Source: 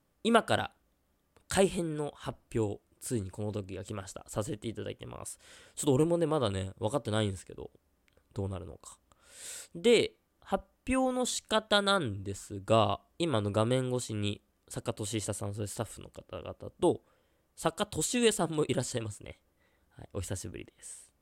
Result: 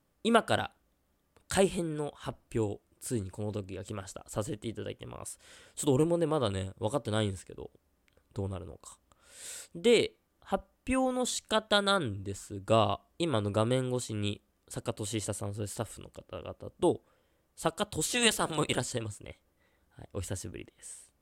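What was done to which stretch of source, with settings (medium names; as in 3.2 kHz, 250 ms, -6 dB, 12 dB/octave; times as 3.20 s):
18.04–18.79 s: spectral peaks clipped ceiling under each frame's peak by 15 dB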